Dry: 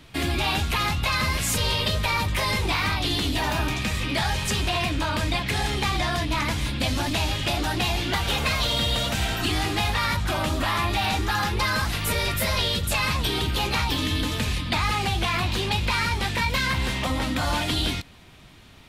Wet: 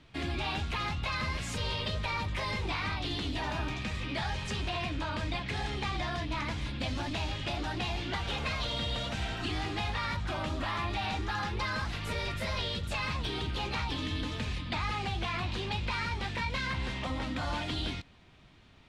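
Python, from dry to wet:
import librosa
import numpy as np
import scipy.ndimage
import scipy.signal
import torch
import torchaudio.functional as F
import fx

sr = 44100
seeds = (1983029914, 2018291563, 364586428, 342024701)

y = fx.air_absorb(x, sr, metres=88.0)
y = F.gain(torch.from_numpy(y), -8.5).numpy()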